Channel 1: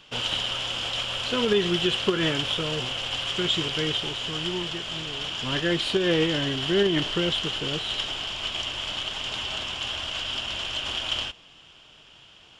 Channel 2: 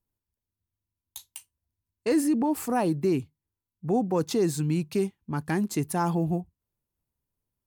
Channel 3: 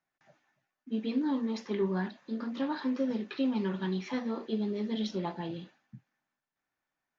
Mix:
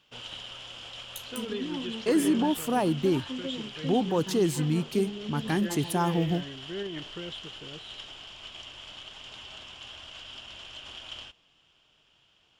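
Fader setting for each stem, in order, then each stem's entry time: -13.5, -0.5, -5.5 dB; 0.00, 0.00, 0.45 s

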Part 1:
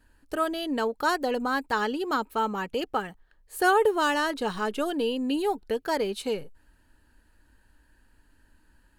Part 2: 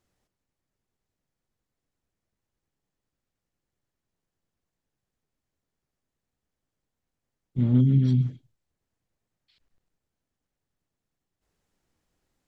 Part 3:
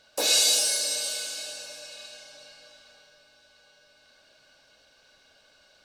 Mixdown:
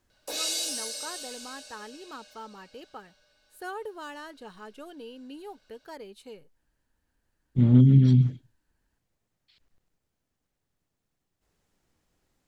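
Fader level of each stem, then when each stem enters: -16.0, +3.0, -9.0 dB; 0.00, 0.00, 0.10 s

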